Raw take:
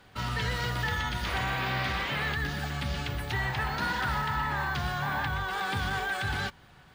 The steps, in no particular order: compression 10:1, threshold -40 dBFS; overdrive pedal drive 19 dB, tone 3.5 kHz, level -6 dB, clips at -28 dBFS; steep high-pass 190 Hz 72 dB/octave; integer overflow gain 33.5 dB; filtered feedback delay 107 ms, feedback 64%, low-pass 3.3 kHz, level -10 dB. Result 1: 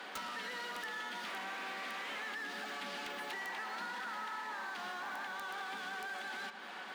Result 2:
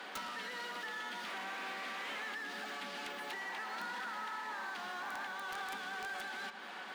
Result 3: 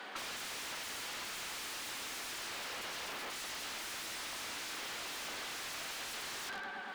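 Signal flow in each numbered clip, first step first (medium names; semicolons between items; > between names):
overdrive pedal > steep high-pass > compression > integer overflow > filtered feedback delay; overdrive pedal > compression > steep high-pass > integer overflow > filtered feedback delay; filtered feedback delay > integer overflow > steep high-pass > overdrive pedal > compression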